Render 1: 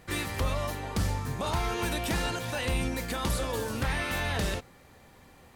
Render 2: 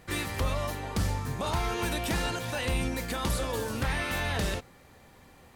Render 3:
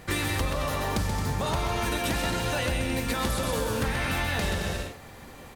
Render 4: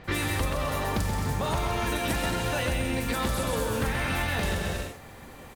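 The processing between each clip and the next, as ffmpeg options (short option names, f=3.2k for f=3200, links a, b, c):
-af anull
-filter_complex "[0:a]asplit=2[a][b];[b]aecho=0:1:130|221|284.7|329.3|360.5:0.631|0.398|0.251|0.158|0.1[c];[a][c]amix=inputs=2:normalize=0,acompressor=threshold=-32dB:ratio=6,volume=7.5dB"
-filter_complex "[0:a]acrusher=bits=7:mode=log:mix=0:aa=0.000001,acrossover=split=5000[a][b];[b]adelay=40[c];[a][c]amix=inputs=2:normalize=0"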